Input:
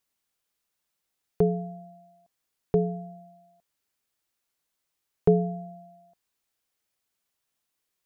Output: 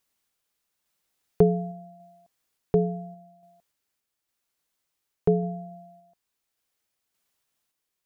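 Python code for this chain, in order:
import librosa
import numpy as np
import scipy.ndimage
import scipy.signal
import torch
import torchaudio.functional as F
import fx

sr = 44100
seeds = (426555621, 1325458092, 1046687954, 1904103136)

y = fx.tremolo_random(x, sr, seeds[0], hz=3.5, depth_pct=55)
y = F.gain(torch.from_numpy(y), 4.5).numpy()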